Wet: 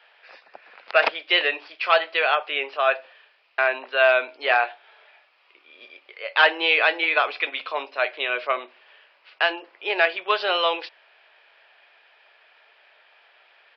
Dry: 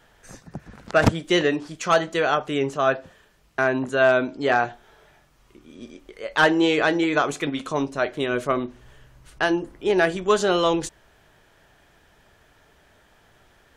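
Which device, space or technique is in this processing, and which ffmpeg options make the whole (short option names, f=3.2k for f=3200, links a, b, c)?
musical greeting card: -af "aresample=11025,aresample=44100,highpass=f=540:w=0.5412,highpass=f=540:w=1.3066,equalizer=f=2.5k:t=o:w=0.55:g=11"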